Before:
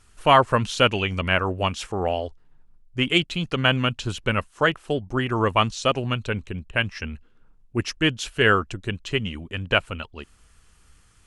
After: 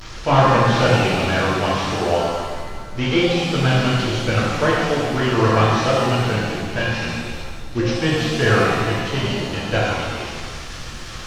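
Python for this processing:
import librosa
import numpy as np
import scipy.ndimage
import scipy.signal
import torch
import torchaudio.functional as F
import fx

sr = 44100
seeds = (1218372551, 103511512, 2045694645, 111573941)

y = fx.delta_mod(x, sr, bps=32000, step_db=-30.0)
y = fx.rev_shimmer(y, sr, seeds[0], rt60_s=1.6, semitones=7, shimmer_db=-8, drr_db=-6.5)
y = F.gain(torch.from_numpy(y), -2.0).numpy()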